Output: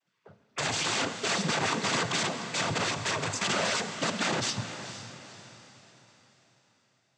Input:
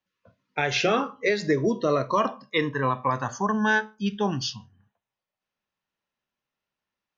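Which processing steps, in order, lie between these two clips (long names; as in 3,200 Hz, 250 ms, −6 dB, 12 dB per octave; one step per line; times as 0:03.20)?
dynamic equaliser 1,800 Hz, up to −8 dB, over −40 dBFS, Q 1.2
in parallel at 0 dB: downward compressor, threshold −32 dBFS, peak gain reduction 13 dB
on the sum: wrap-around overflow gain 22.5 dB
cochlear-implant simulation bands 16
on a send: feedback delay with all-pass diffusion 476 ms, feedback 43%, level −11.5 dB
on the sum: four-comb reverb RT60 1.9 s, combs from 33 ms, DRR 12 dB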